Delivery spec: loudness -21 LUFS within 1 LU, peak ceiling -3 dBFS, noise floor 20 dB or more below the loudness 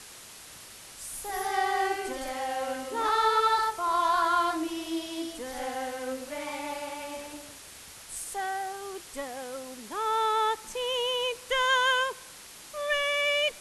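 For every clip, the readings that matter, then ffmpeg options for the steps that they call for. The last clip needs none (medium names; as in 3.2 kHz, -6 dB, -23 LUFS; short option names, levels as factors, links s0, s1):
noise floor -48 dBFS; noise floor target -49 dBFS; loudness -29.0 LUFS; peak level -14.5 dBFS; loudness target -21.0 LUFS
-> -af "afftdn=nr=6:nf=-48"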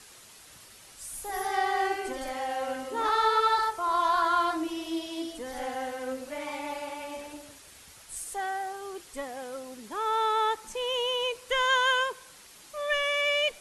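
noise floor -52 dBFS; loudness -29.0 LUFS; peak level -14.5 dBFS; loudness target -21.0 LUFS
-> -af "volume=2.51"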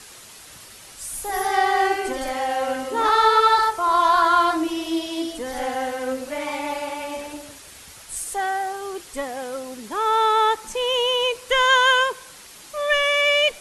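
loudness -21.0 LUFS; peak level -6.5 dBFS; noise floor -44 dBFS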